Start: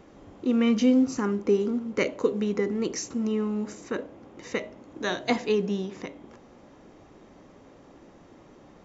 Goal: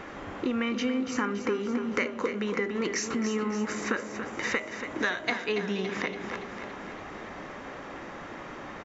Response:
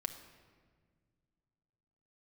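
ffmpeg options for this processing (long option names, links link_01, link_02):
-filter_complex "[0:a]equalizer=frequency=1700:width=0.63:gain=14.5,acompressor=threshold=-33dB:ratio=6,asplit=2[link_01][link_02];[link_02]aecho=0:1:283|566|849|1132|1415|1698|1981:0.355|0.213|0.128|0.0766|0.046|0.0276|0.0166[link_03];[link_01][link_03]amix=inputs=2:normalize=0,volume=5.5dB"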